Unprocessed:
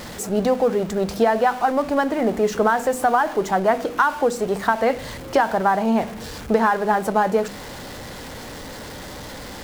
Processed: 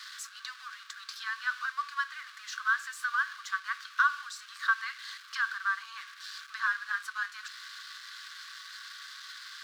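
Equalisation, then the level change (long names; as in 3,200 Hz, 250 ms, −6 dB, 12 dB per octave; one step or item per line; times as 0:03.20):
Chebyshev high-pass with heavy ripple 1,100 Hz, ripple 9 dB
high-shelf EQ 7,900 Hz −11 dB
0.0 dB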